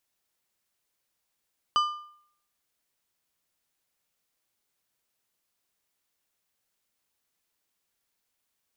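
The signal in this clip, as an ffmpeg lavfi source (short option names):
-f lavfi -i "aevalsrc='0.126*pow(10,-3*t/0.62)*sin(2*PI*1200*t)+0.0501*pow(10,-3*t/0.471)*sin(2*PI*3000*t)+0.02*pow(10,-3*t/0.409)*sin(2*PI*4800*t)+0.00794*pow(10,-3*t/0.383)*sin(2*PI*6000*t)+0.00316*pow(10,-3*t/0.354)*sin(2*PI*7800*t)':d=1.55:s=44100"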